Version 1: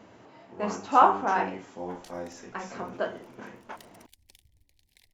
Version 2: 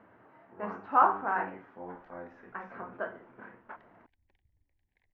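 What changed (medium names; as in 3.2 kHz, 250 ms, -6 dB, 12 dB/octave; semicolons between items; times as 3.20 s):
speech: add treble shelf 2.7 kHz +7.5 dB; master: add four-pole ladder low-pass 1.9 kHz, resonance 40%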